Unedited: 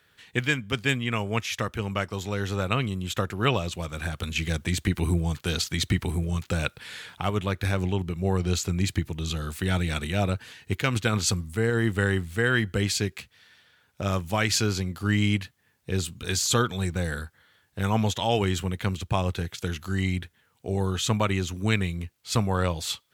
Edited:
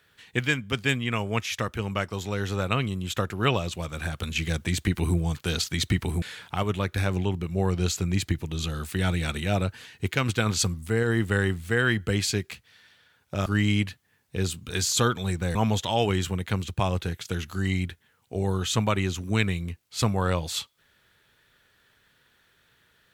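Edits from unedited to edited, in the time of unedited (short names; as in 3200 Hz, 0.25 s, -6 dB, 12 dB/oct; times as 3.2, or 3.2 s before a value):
6.22–6.89 cut
14.13–15 cut
17.09–17.88 cut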